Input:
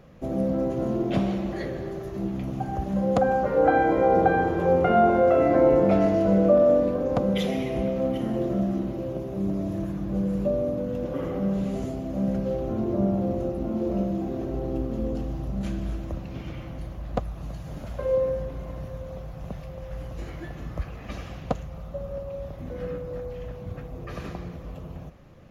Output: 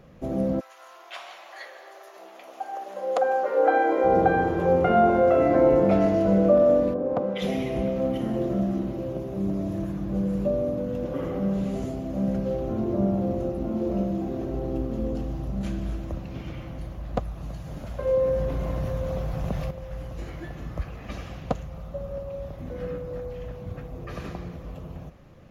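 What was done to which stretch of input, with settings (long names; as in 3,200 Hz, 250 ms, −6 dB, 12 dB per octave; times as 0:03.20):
0:00.59–0:04.03: high-pass filter 1,200 Hz → 300 Hz 24 dB per octave
0:06.93–0:07.41: resonant band-pass 290 Hz → 1,300 Hz, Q 0.53
0:18.07–0:19.71: envelope flattener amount 50%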